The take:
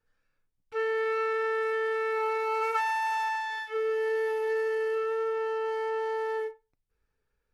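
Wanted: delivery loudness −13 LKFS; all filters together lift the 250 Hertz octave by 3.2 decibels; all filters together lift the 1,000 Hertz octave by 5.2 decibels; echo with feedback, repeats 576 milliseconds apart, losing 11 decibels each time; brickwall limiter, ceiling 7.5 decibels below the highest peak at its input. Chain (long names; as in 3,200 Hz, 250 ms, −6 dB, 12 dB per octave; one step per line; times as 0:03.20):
parametric band 250 Hz +7 dB
parametric band 1,000 Hz +6 dB
brickwall limiter −20.5 dBFS
repeating echo 576 ms, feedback 28%, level −11 dB
level +14 dB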